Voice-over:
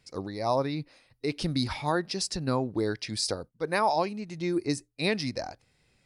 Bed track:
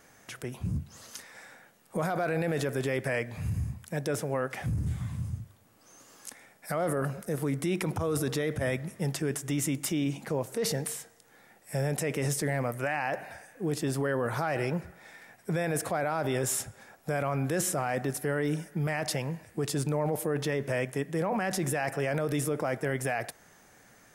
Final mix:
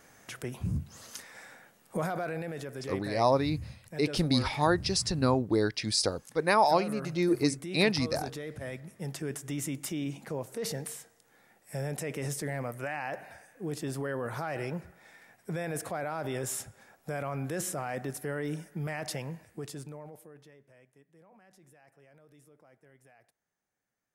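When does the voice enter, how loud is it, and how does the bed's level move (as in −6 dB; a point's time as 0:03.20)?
2.75 s, +2.0 dB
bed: 0:01.92 0 dB
0:02.58 −9.5 dB
0:08.76 −9.5 dB
0:09.25 −5 dB
0:19.43 −5 dB
0:20.69 −30 dB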